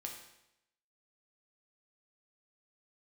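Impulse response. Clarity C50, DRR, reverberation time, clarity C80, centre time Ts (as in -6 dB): 5.0 dB, 0.5 dB, 0.85 s, 8.0 dB, 32 ms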